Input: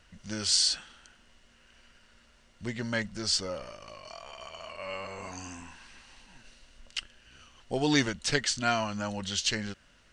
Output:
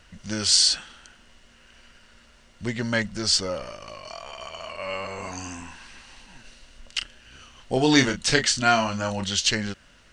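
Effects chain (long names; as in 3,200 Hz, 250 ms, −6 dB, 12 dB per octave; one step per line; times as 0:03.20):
0:06.98–0:09.24: double-tracking delay 31 ms −7.5 dB
level +6.5 dB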